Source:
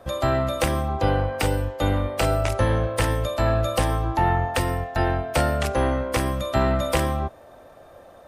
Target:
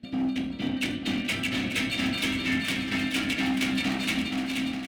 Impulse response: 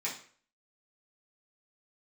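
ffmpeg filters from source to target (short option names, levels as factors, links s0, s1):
-filter_complex "[0:a]asplit=3[s0][s1][s2];[s0]bandpass=f=270:t=q:w=8,volume=1[s3];[s1]bandpass=f=2290:t=q:w=8,volume=0.501[s4];[s2]bandpass=f=3010:t=q:w=8,volume=0.355[s5];[s3][s4][s5]amix=inputs=3:normalize=0,acrossover=split=870[s6][s7];[s7]dynaudnorm=f=370:g=7:m=5.96[s8];[s6][s8]amix=inputs=2:normalize=0,asplit=4[s9][s10][s11][s12];[s10]asetrate=33038,aresample=44100,atempo=1.33484,volume=0.2[s13];[s11]asetrate=52444,aresample=44100,atempo=0.840896,volume=0.794[s14];[s12]asetrate=55563,aresample=44100,atempo=0.793701,volume=0.251[s15];[s9][s13][s14][s15]amix=inputs=4:normalize=0,lowshelf=f=280:t=q:w=3:g=7.5,atempo=1.7,asoftclip=type=hard:threshold=0.0447,aecho=1:1:480|888|1235|1530|1780:0.631|0.398|0.251|0.158|0.1,asplit=2[s16][s17];[1:a]atrim=start_sample=2205,asetrate=52920,aresample=44100[s18];[s17][s18]afir=irnorm=-1:irlink=0,volume=0.447[s19];[s16][s19]amix=inputs=2:normalize=0"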